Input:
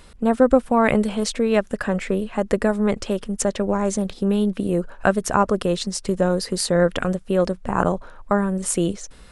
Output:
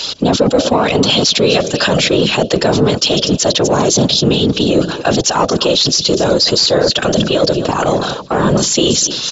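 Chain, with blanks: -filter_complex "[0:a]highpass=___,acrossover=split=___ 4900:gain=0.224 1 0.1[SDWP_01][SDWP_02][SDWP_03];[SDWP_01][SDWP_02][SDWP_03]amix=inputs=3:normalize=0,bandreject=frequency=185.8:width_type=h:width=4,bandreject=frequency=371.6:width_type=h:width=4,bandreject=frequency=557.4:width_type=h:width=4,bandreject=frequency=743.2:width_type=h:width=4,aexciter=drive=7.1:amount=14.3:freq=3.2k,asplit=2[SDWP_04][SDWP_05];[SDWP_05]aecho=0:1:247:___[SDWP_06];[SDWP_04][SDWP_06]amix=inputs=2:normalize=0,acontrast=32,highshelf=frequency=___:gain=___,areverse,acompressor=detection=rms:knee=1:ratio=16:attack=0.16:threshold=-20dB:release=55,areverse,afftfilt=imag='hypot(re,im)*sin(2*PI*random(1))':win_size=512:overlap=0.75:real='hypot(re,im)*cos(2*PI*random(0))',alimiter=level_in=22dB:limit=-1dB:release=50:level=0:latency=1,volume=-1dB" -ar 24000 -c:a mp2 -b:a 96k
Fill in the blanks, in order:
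93, 210, 0.0794, 5k, -6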